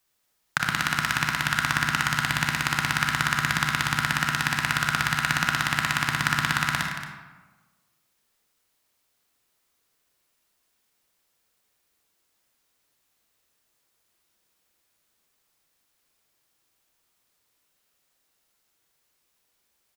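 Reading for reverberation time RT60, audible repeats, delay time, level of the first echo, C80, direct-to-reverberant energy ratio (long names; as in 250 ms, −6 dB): 1.3 s, 2, 76 ms, −11.0 dB, 4.5 dB, 1.0 dB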